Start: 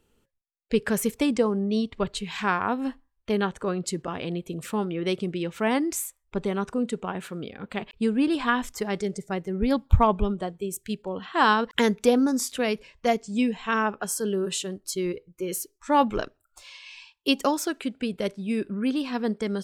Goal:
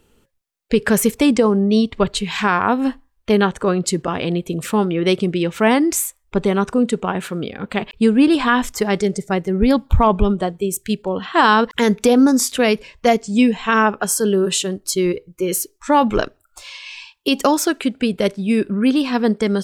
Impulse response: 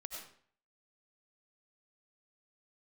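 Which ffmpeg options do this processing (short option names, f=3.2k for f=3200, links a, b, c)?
-af "alimiter=level_in=13.5dB:limit=-1dB:release=50:level=0:latency=1,volume=-3.5dB"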